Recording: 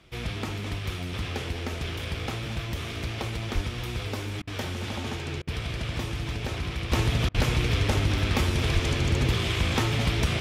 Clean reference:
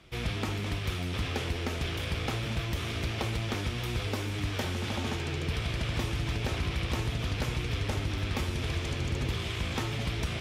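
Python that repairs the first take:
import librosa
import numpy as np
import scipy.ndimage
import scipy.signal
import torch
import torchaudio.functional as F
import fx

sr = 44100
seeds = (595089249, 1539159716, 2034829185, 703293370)

y = fx.highpass(x, sr, hz=140.0, slope=24, at=(3.54, 3.66), fade=0.02)
y = fx.highpass(y, sr, hz=140.0, slope=24, at=(7.35, 7.47), fade=0.02)
y = fx.highpass(y, sr, hz=140.0, slope=24, at=(8.73, 8.85), fade=0.02)
y = fx.fix_interpolate(y, sr, at_s=(4.42, 5.42, 7.29), length_ms=52.0)
y = fx.fix_echo_inverse(y, sr, delay_ms=221, level_db=-14.5)
y = fx.gain(y, sr, db=fx.steps((0.0, 0.0), (6.92, -7.0)))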